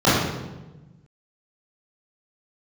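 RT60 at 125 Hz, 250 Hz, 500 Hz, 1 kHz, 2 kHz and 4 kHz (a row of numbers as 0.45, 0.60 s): 1.8, 1.6, 1.2, 1.0, 0.90, 0.80 s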